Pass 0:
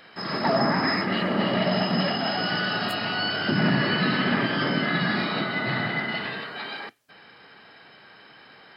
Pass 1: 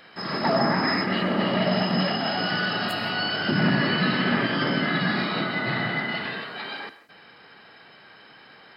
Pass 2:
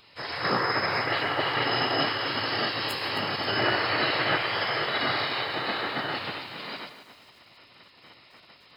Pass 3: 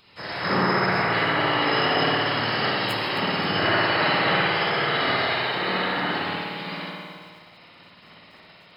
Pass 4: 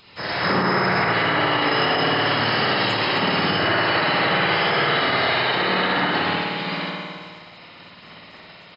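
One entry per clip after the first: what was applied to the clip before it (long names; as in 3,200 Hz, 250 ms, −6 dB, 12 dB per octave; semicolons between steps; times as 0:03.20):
reverb whose tail is shaped and stops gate 200 ms flat, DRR 11.5 dB
gate on every frequency bin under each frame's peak −10 dB weak; feedback echo at a low word length 264 ms, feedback 35%, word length 9 bits, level −12 dB; level +2.5 dB
parametric band 180 Hz +9.5 dB 0.34 octaves; spring reverb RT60 1.6 s, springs 54 ms, chirp 20 ms, DRR −4 dB; level −1 dB
brickwall limiter −17 dBFS, peak gain reduction 8 dB; downsampling to 16,000 Hz; level +6 dB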